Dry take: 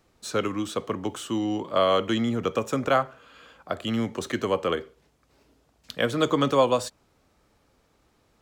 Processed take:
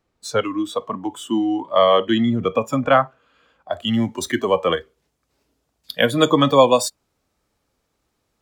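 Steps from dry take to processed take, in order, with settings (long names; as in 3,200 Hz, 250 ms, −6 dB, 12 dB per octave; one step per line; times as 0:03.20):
noise reduction from a noise print of the clip's start 15 dB
high-shelf EQ 4,900 Hz −5 dB, from 0:03.73 +7 dB
level +7.5 dB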